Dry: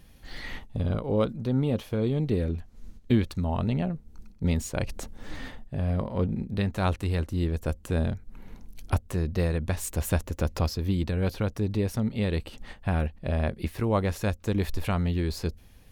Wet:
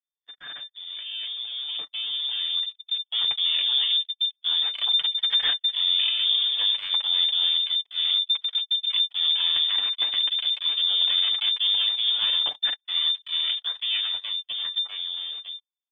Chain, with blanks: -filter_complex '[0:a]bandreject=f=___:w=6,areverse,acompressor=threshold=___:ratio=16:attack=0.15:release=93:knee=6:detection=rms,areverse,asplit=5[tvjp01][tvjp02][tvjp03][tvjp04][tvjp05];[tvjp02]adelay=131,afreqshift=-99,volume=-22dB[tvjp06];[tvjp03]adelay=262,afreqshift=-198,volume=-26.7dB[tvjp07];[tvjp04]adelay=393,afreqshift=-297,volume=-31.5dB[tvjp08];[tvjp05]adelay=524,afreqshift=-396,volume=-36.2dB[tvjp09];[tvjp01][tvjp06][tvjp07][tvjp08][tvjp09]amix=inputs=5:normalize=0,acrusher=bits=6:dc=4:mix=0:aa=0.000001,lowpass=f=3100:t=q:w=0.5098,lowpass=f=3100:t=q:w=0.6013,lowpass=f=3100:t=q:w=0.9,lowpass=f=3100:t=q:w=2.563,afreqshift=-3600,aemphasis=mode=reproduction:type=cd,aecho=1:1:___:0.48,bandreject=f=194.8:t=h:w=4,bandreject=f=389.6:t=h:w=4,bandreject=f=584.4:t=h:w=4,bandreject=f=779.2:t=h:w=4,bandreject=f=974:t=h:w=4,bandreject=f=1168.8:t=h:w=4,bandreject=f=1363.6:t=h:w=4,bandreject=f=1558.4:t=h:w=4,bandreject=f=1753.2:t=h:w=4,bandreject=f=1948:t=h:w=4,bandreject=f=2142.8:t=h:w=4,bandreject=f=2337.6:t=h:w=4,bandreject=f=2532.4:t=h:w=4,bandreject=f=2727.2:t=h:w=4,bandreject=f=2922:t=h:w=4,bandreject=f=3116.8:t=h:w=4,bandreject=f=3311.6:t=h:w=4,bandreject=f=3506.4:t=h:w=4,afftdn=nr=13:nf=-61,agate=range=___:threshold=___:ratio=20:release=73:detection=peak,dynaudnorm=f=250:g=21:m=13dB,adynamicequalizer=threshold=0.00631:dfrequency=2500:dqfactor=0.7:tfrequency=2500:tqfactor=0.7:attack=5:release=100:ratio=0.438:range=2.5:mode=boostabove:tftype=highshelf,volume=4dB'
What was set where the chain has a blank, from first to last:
900, -32dB, 6.9, -48dB, -49dB